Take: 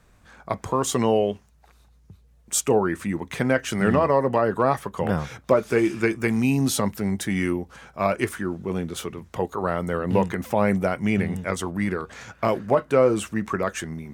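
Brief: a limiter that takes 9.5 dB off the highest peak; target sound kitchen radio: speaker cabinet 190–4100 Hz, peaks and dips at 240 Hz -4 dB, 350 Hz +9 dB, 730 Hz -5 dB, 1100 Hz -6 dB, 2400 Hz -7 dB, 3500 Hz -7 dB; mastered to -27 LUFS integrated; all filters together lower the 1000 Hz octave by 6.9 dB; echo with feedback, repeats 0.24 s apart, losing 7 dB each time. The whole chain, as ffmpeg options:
-af "equalizer=f=1k:t=o:g=-3.5,alimiter=limit=-16dB:level=0:latency=1,highpass=190,equalizer=f=240:t=q:w=4:g=-4,equalizer=f=350:t=q:w=4:g=9,equalizer=f=730:t=q:w=4:g=-5,equalizer=f=1.1k:t=q:w=4:g=-6,equalizer=f=2.4k:t=q:w=4:g=-7,equalizer=f=3.5k:t=q:w=4:g=-7,lowpass=f=4.1k:w=0.5412,lowpass=f=4.1k:w=1.3066,aecho=1:1:240|480|720|960|1200:0.447|0.201|0.0905|0.0407|0.0183,volume=-0.5dB"

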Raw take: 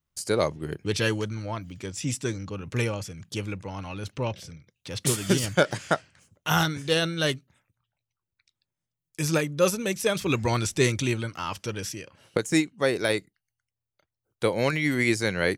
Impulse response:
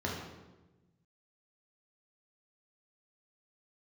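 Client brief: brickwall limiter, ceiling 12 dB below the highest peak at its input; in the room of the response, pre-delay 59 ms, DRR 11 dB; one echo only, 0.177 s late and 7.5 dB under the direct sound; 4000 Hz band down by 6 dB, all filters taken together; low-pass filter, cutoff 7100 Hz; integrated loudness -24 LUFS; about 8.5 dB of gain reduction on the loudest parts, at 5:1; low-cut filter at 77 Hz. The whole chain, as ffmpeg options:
-filter_complex "[0:a]highpass=77,lowpass=7.1k,equalizer=f=4k:t=o:g=-7.5,acompressor=threshold=-27dB:ratio=5,alimiter=limit=-23.5dB:level=0:latency=1,aecho=1:1:177:0.422,asplit=2[a][b];[1:a]atrim=start_sample=2205,adelay=59[c];[b][c]afir=irnorm=-1:irlink=0,volume=-17dB[d];[a][d]amix=inputs=2:normalize=0,volume=10.5dB"

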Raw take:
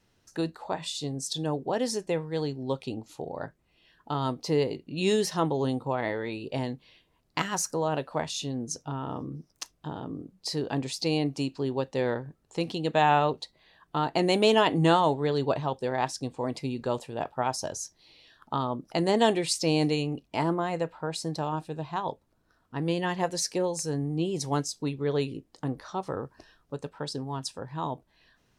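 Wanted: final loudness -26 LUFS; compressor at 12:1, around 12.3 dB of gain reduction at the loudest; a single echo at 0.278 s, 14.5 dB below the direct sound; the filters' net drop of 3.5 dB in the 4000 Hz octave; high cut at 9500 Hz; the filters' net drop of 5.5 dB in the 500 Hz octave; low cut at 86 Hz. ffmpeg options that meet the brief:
-af "highpass=86,lowpass=9.5k,equalizer=f=500:t=o:g=-7,equalizer=f=4k:t=o:g=-4.5,acompressor=threshold=-32dB:ratio=12,aecho=1:1:278:0.188,volume=12.5dB"

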